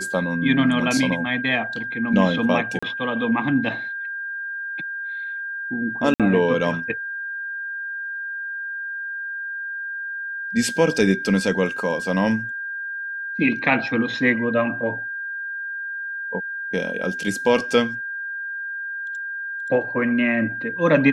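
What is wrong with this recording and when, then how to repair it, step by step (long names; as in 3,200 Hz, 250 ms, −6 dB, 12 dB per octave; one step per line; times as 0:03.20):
whistle 1,600 Hz −27 dBFS
0:02.79–0:02.83: drop-out 35 ms
0:06.14–0:06.20: drop-out 57 ms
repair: notch filter 1,600 Hz, Q 30
repair the gap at 0:02.79, 35 ms
repair the gap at 0:06.14, 57 ms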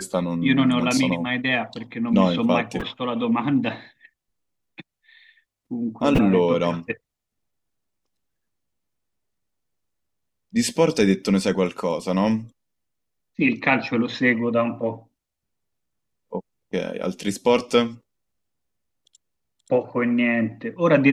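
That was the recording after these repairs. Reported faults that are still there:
none of them is left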